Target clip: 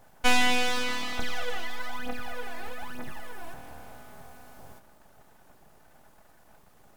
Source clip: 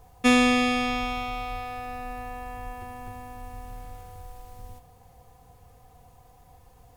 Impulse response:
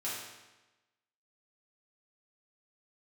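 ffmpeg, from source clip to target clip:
-filter_complex "[0:a]highpass=frequency=62:poles=1,aeval=exprs='abs(val(0))':channel_layout=same,asettb=1/sr,asplit=3[link_01][link_02][link_03];[link_01]atrim=end=1.194[link_04];[link_02]atrim=start=1.19:end=3.54,asetpts=PTS-STARTPTS,afade=type=in:duration=0.004:curve=qsin,afade=type=out:start_time=2.346:duration=0.004:curve=qsin,aphaser=in_gain=1:out_gain=1:delay=3.1:decay=0.7:speed=1.1:type=triangular[link_05];[link_03]atrim=start=3.536[link_06];[link_04][link_05]acrossfade=duration=0.004:curve1=hsin:curve2=qsin[link_07];[link_07][link_06]acrossfade=duration=0.004:curve1=qsin:curve2=hsin"

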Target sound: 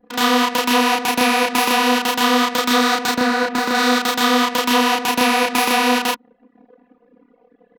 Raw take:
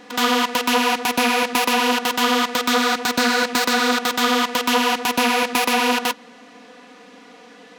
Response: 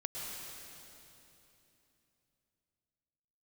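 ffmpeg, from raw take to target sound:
-filter_complex "[0:a]asettb=1/sr,asplit=3[link_01][link_02][link_03];[link_01]atrim=end=3.164[link_04];[link_02]atrim=start=3.16:end=3.75,asetpts=PTS-STARTPTS,afade=type=in:duration=0.004:curve=qsin,afade=type=out:start_time=0.586:duration=0.004:curve=qsin,highshelf=frequency=2500:gain=-9.5[link_05];[link_03]atrim=start=3.746[link_06];[link_04][link_05]acrossfade=duration=0.004:curve1=hsin:curve2=qsin[link_07];[link_07][link_06]acrossfade=duration=0.004:curve1=qsin:curve2=hsin,asplit=2[link_08][link_09];[link_09]adelay=32,volume=-2dB[link_10];[link_08][link_10]amix=inputs=2:normalize=0,anlmdn=6.31"

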